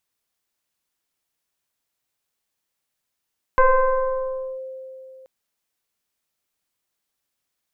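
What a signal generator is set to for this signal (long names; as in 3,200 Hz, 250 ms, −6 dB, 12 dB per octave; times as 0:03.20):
two-operator FM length 1.68 s, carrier 524 Hz, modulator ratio 0.98, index 1.6, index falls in 1.02 s linear, decay 3.07 s, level −10 dB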